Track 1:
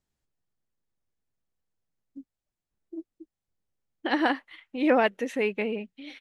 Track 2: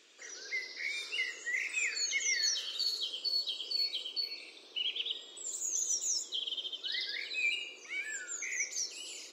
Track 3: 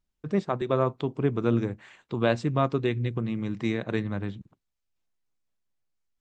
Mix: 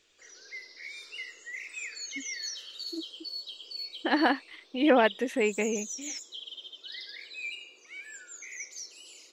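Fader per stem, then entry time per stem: 0.0 dB, −5.5 dB, muted; 0.00 s, 0.00 s, muted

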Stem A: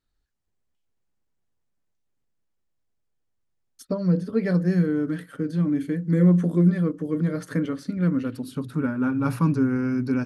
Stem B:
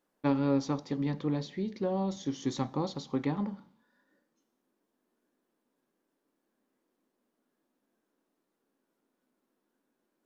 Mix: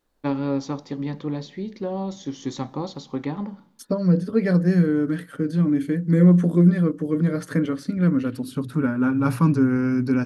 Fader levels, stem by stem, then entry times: +3.0, +3.0 decibels; 0.00, 0.00 seconds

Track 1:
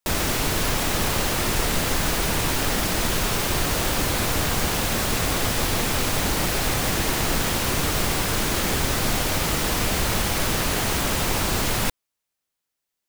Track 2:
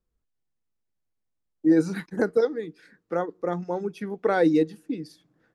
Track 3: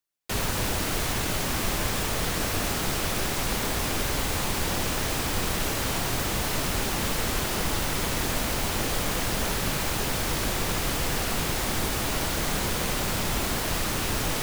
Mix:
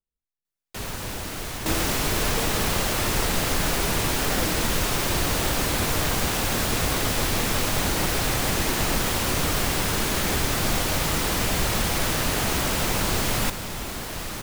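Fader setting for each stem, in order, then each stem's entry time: −1.5, −14.0, −5.0 decibels; 1.60, 0.00, 0.45 seconds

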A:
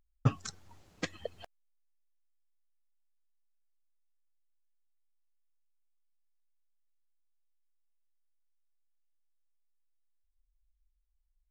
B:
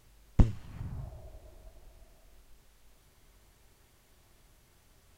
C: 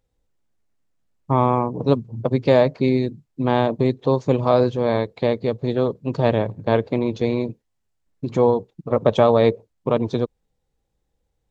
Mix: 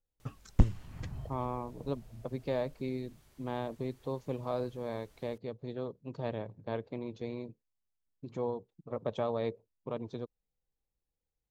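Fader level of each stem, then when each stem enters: −14.5, −1.0, −18.0 decibels; 0.00, 0.20, 0.00 seconds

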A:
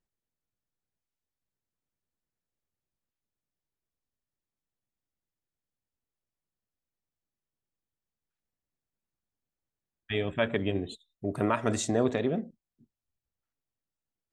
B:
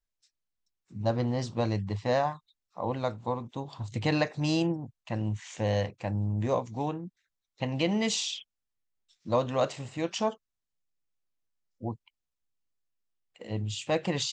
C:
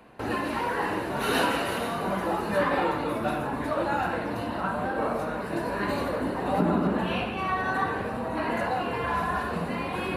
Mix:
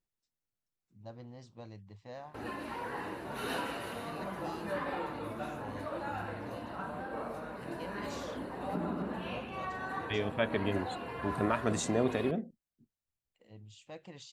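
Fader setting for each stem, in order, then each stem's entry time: −3.5, −20.0, −11.5 decibels; 0.00, 0.00, 2.15 seconds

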